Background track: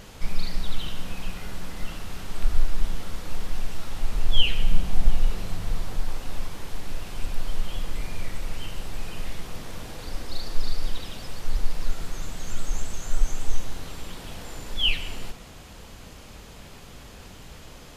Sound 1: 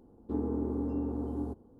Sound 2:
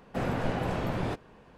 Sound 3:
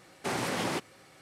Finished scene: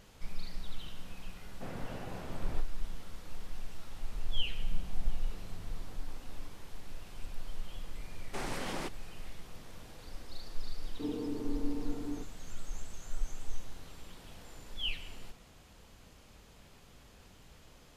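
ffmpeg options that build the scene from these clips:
-filter_complex "[1:a]asplit=2[s0][s1];[0:a]volume=0.224[s2];[s0]acompressor=threshold=0.00891:ratio=6:attack=3.2:release=140:knee=1:detection=peak[s3];[s1]aecho=1:1:6.6:0.76[s4];[2:a]atrim=end=1.57,asetpts=PTS-STARTPTS,volume=0.211,afade=t=in:d=0.004:c=hsin,afade=t=out:st=1.566:d=0.004:c=hsin,adelay=1460[s5];[s3]atrim=end=1.79,asetpts=PTS-STARTPTS,volume=0.15,afade=t=in:d=0.004:c=hsin,afade=t=out:st=1.786:d=0.004:c=hsin,adelay=5040[s6];[3:a]atrim=end=1.21,asetpts=PTS-STARTPTS,volume=0.422,afade=t=in:d=0.004:c=hsin,afade=t=out:st=1.206:d=0.004:c=hsin,adelay=8090[s7];[s4]atrim=end=1.79,asetpts=PTS-STARTPTS,volume=0.447,afade=t=in:d=0.004:c=hsin,afade=t=out:st=1.786:d=0.004:c=hsin,adelay=10700[s8];[s2][s5][s6][s7][s8]amix=inputs=5:normalize=0"

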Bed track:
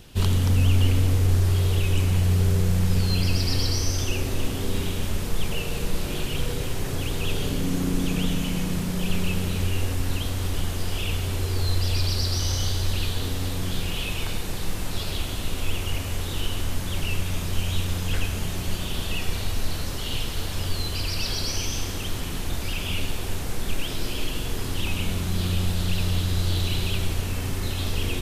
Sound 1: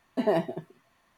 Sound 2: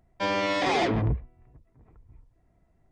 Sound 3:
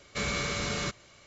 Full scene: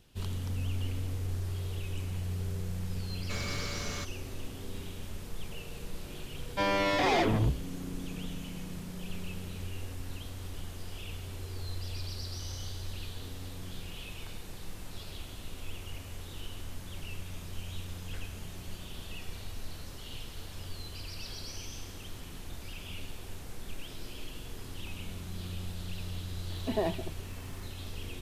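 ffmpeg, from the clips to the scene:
-filter_complex "[0:a]volume=0.188[s0];[3:a]volume=25.1,asoftclip=hard,volume=0.0398[s1];[1:a]acompressor=mode=upward:threshold=0.0178:ratio=2.5:attack=3.2:release=140:knee=2.83:detection=peak[s2];[s1]atrim=end=1.26,asetpts=PTS-STARTPTS,volume=0.501,afade=t=in:d=0.004:c=hsin,afade=t=out:st=1.256:d=0.004:c=hsin,adelay=3140[s3];[2:a]atrim=end=2.91,asetpts=PTS-STARTPTS,volume=0.794,afade=t=in:d=0.004:c=hsin,afade=t=out:st=2.906:d=0.004:c=hsin,adelay=6370[s4];[s2]atrim=end=1.17,asetpts=PTS-STARTPTS,volume=0.501,afade=t=in:d=0.004:c=hsin,afade=t=out:st=1.166:d=0.004:c=hsin,adelay=26500[s5];[s0][s3][s4][s5]amix=inputs=4:normalize=0"

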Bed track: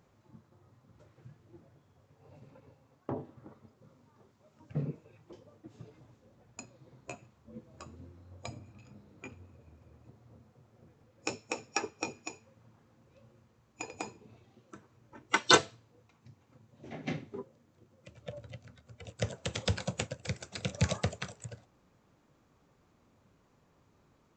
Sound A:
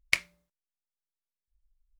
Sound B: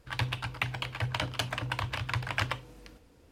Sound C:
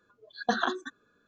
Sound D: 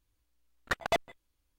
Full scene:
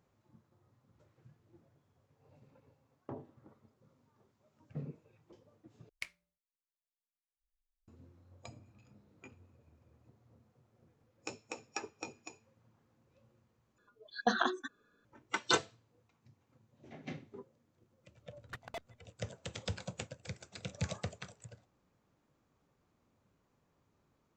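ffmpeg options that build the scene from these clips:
-filter_complex "[0:a]volume=0.398,asplit=3[s0][s1][s2];[s0]atrim=end=5.894[s3];[1:a]atrim=end=1.99,asetpts=PTS-STARTPTS,volume=0.133[s4];[s1]atrim=start=7.876:end=13.784[s5];[3:a]atrim=end=1.27,asetpts=PTS-STARTPTS,volume=0.708[s6];[s2]atrim=start=15.046[s7];[4:a]atrim=end=1.58,asetpts=PTS-STARTPTS,volume=0.158,afade=t=in:d=0.004:c=hsin,afade=t=out:st=1.576:d=0.004:c=hsin,adelay=17820[s8];[s3][s4]acrossfade=d=0.004:c1=hsin:c2=hsin[s9];[s9][s5]acrossfade=d=0.004:c1=hsin:c2=hsin[s10];[s10][s6]acrossfade=d=0.004:c1=hsin:c2=hsin[s11];[s11][s7]acrossfade=d=0.004:c1=hsin:c2=hsin[s12];[s12][s8]amix=inputs=2:normalize=0"

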